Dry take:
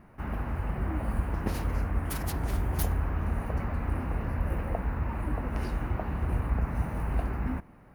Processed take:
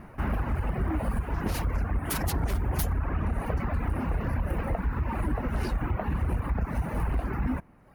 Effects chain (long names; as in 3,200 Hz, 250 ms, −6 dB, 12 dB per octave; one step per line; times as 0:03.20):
reverb reduction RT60 1.1 s
in parallel at +1 dB: brickwall limiter −23.5 dBFS, peak gain reduction 9 dB
on the sum: downward compressor, threshold −24 dBFS, peak gain reduction 6.5 dB
sine wavefolder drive 4 dB, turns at −15 dBFS
level −5.5 dB